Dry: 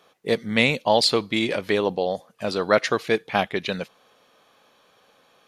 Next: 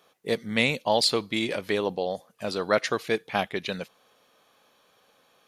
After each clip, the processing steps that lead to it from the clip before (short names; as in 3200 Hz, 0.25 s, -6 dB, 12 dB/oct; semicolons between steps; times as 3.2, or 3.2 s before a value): high shelf 8000 Hz +7.5 dB; gain -4.5 dB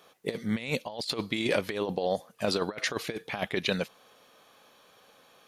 negative-ratio compressor -29 dBFS, ratio -0.5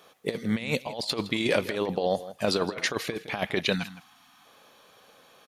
outdoor echo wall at 28 m, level -15 dB; spectral gain 3.75–4.45, 320–670 Hz -23 dB; gain +2.5 dB